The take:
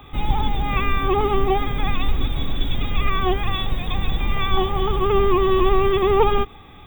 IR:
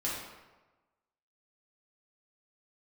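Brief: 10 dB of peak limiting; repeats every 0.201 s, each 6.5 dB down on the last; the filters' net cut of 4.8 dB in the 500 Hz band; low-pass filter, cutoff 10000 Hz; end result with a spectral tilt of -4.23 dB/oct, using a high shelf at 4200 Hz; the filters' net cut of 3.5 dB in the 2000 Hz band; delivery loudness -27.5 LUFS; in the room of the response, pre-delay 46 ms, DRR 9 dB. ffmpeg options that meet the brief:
-filter_complex "[0:a]lowpass=10k,equalizer=f=500:t=o:g=-7,equalizer=f=2k:t=o:g=-5,highshelf=f=4.2k:g=3.5,alimiter=limit=-16dB:level=0:latency=1,aecho=1:1:201|402|603|804|1005|1206:0.473|0.222|0.105|0.0491|0.0231|0.0109,asplit=2[a][b];[1:a]atrim=start_sample=2205,adelay=46[c];[b][c]afir=irnorm=-1:irlink=0,volume=-14dB[d];[a][d]amix=inputs=2:normalize=0,volume=-1dB"

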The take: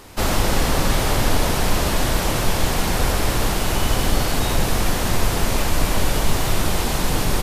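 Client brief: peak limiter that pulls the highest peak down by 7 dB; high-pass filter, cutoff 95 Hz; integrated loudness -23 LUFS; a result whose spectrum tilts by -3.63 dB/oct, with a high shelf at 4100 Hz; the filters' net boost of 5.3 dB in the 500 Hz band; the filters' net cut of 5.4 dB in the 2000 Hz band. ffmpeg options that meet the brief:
-af "highpass=95,equalizer=f=500:t=o:g=7,equalizer=f=2k:t=o:g=-8.5,highshelf=f=4.1k:g=4,volume=-0.5dB,alimiter=limit=-14dB:level=0:latency=1"

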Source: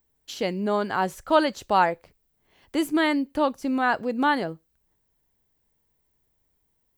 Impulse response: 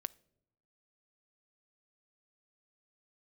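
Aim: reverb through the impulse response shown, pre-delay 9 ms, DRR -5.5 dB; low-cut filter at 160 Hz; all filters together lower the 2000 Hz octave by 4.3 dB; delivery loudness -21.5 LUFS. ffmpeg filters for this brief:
-filter_complex "[0:a]highpass=160,equalizer=f=2k:t=o:g=-6,asplit=2[a][b];[1:a]atrim=start_sample=2205,adelay=9[c];[b][c]afir=irnorm=-1:irlink=0,volume=7.5dB[d];[a][d]amix=inputs=2:normalize=0,volume=-2dB"

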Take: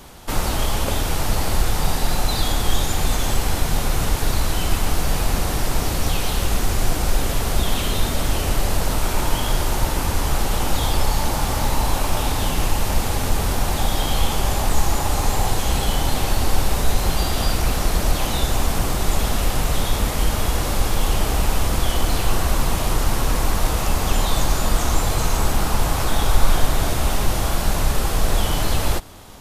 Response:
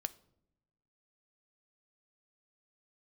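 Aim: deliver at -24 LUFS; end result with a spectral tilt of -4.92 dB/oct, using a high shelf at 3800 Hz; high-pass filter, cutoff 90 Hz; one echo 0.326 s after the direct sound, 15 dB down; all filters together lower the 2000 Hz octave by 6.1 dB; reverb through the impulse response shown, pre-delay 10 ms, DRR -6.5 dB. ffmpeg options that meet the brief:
-filter_complex "[0:a]highpass=90,equalizer=f=2k:t=o:g=-6,highshelf=f=3.8k:g=-8,aecho=1:1:326:0.178,asplit=2[a][b];[1:a]atrim=start_sample=2205,adelay=10[c];[b][c]afir=irnorm=-1:irlink=0,volume=7.5dB[d];[a][d]amix=inputs=2:normalize=0,volume=-5dB"

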